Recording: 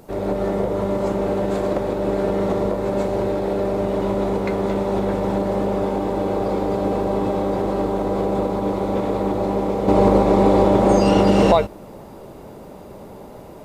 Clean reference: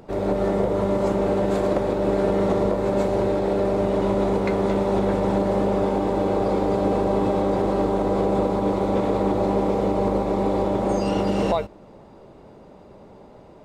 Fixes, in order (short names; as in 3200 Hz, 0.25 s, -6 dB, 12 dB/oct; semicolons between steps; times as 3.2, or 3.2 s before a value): expander -31 dBFS, range -21 dB; gain 0 dB, from 9.88 s -7.5 dB